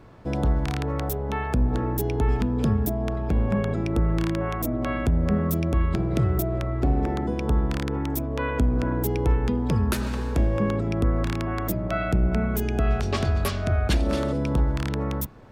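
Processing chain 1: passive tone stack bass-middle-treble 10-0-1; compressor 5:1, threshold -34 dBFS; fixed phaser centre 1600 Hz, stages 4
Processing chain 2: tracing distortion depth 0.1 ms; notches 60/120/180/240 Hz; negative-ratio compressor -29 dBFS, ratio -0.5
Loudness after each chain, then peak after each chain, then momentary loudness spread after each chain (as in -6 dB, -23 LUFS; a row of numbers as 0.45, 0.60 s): -41.0, -31.0 LUFS; -27.0, -13.5 dBFS; 3, 7 LU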